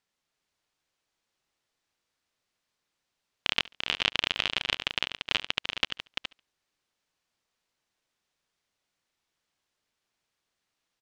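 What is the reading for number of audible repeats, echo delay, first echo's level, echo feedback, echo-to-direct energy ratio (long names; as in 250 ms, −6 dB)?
5, 70 ms, −22.5 dB, repeats not evenly spaced, −5.0 dB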